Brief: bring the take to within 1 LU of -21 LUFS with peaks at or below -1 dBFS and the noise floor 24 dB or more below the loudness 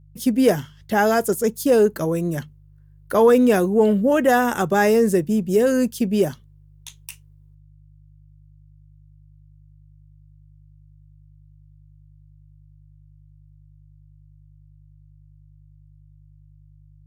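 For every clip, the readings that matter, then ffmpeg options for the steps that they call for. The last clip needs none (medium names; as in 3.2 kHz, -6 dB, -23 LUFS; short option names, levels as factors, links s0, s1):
hum 50 Hz; highest harmonic 150 Hz; hum level -47 dBFS; loudness -19.0 LUFS; peak level -6.0 dBFS; loudness target -21.0 LUFS
-> -af "bandreject=f=50:t=h:w=4,bandreject=f=100:t=h:w=4,bandreject=f=150:t=h:w=4"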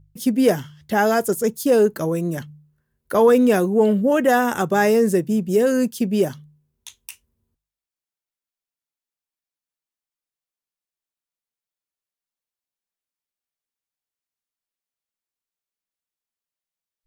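hum not found; loudness -19.0 LUFS; peak level -5.5 dBFS; loudness target -21.0 LUFS
-> -af "volume=0.794"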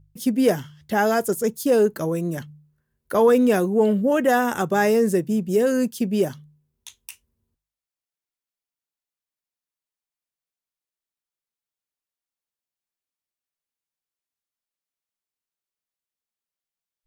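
loudness -21.0 LUFS; peak level -7.5 dBFS; noise floor -92 dBFS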